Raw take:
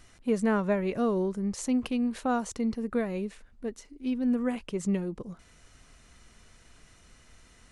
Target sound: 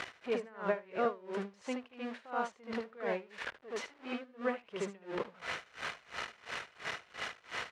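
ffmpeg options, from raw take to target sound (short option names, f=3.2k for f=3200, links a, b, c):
-filter_complex "[0:a]aeval=exprs='val(0)+0.5*0.0126*sgn(val(0))':c=same,tiltshelf=f=970:g=-6,acompressor=threshold=-38dB:ratio=10,highpass=130,lowpass=2.2k,lowshelf=f=350:t=q:w=1.5:g=-6.5,asplit=2[a][b];[b]aecho=0:1:76:0.668[c];[a][c]amix=inputs=2:normalize=0,aeval=exprs='val(0)*pow(10,-26*(0.5-0.5*cos(2*PI*2.9*n/s))/20)':c=same,volume=11dB"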